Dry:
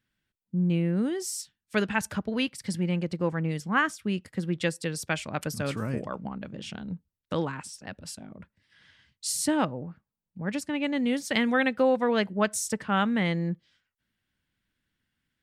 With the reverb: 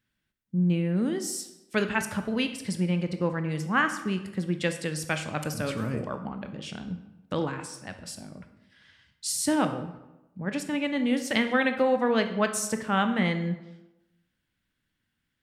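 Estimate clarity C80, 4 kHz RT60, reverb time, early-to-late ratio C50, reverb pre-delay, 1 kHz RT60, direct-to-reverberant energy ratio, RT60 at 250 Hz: 12.5 dB, 0.65 s, 0.95 s, 10.0 dB, 16 ms, 0.95 s, 7.5 dB, 0.95 s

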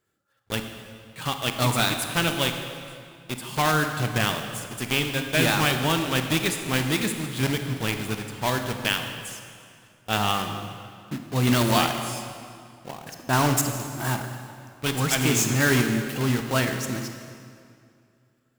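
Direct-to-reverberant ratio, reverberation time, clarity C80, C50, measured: 5.5 dB, 2.3 s, 7.5 dB, 6.5 dB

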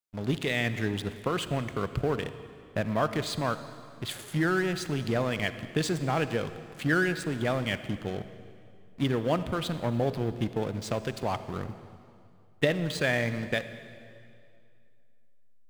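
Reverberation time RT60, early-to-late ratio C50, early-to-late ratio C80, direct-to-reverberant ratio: 2.4 s, 12.0 dB, 13.0 dB, 11.5 dB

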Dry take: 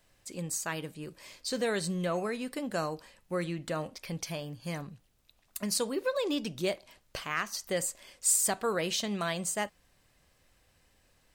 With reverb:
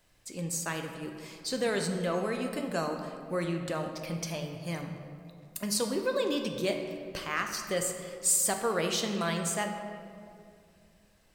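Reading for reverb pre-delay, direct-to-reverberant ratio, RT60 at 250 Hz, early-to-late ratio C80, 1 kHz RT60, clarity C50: 8 ms, 4.0 dB, 3.1 s, 7.0 dB, 2.2 s, 5.5 dB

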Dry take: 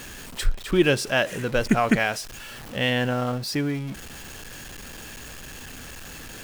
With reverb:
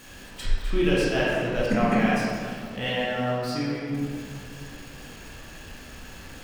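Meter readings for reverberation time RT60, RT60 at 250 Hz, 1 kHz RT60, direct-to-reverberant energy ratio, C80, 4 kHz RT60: 2.3 s, 2.8 s, 2.2 s, -7.5 dB, -1.0 dB, 1.2 s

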